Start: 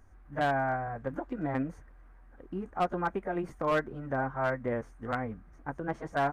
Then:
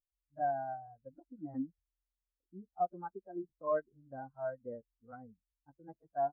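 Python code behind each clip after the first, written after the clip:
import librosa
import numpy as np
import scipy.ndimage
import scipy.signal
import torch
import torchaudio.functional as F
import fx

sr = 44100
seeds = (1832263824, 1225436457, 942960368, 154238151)

y = fx.spectral_expand(x, sr, expansion=2.5)
y = y * 10.0 ** (-1.5 / 20.0)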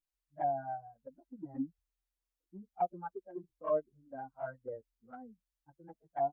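y = fx.env_flanger(x, sr, rest_ms=6.4, full_db=-30.0)
y = y * 10.0 ** (3.0 / 20.0)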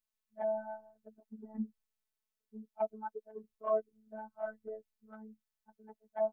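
y = fx.robotise(x, sr, hz=217.0)
y = y * 10.0 ** (2.0 / 20.0)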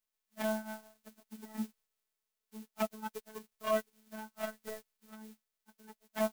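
y = fx.envelope_flatten(x, sr, power=0.3)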